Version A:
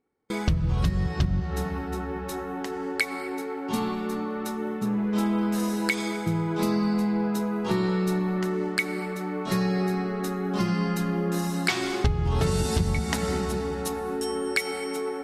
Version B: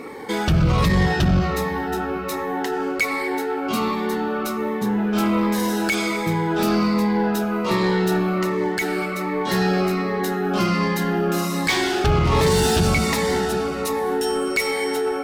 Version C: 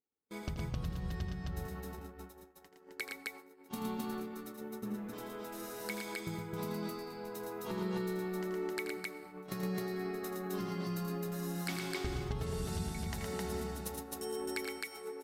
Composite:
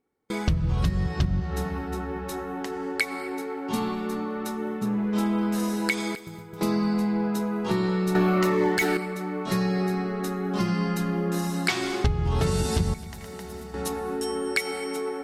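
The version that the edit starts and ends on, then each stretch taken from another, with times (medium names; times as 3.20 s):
A
6.15–6.61 s: from C
8.15–8.97 s: from B
12.94–13.74 s: from C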